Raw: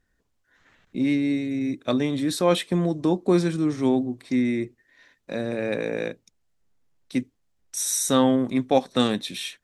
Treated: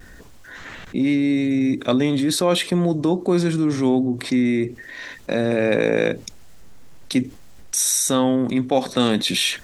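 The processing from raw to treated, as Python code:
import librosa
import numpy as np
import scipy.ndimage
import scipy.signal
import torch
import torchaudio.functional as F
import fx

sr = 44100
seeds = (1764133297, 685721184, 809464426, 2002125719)

y = fx.rider(x, sr, range_db=10, speed_s=0.5)
y = fx.vibrato(y, sr, rate_hz=0.45, depth_cents=13.0)
y = fx.env_flatten(y, sr, amount_pct=50)
y = y * librosa.db_to_amplitude(1.5)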